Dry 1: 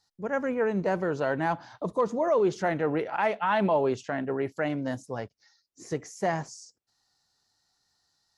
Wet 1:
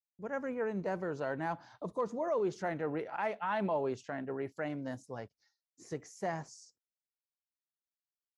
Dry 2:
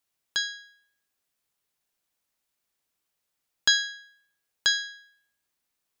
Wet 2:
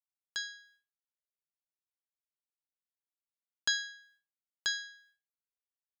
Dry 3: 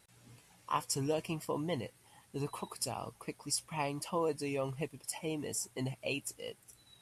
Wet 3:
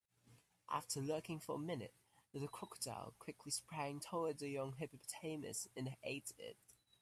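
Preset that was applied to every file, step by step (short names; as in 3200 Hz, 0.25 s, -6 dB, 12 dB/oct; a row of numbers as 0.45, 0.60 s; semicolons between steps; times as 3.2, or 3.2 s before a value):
expander -55 dBFS; dynamic EQ 3200 Hz, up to -3 dB, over -50 dBFS, Q 2.5; gain -8.5 dB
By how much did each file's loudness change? -8.5, -9.5, -8.5 LU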